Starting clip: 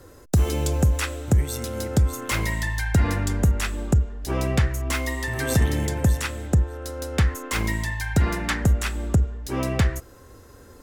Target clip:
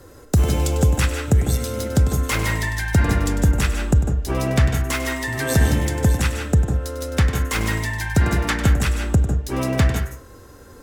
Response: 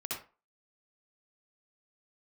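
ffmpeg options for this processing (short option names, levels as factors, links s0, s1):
-filter_complex "[0:a]asplit=2[s0][s1];[1:a]atrim=start_sample=2205,asetrate=52920,aresample=44100,adelay=99[s2];[s1][s2]afir=irnorm=-1:irlink=0,volume=0.562[s3];[s0][s3]amix=inputs=2:normalize=0,volume=1.33"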